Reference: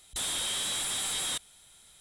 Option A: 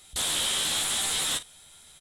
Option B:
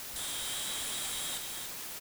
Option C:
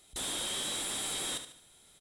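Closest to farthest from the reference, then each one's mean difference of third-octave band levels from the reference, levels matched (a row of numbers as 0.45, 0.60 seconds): A, C, B; 1.5, 3.0, 9.5 decibels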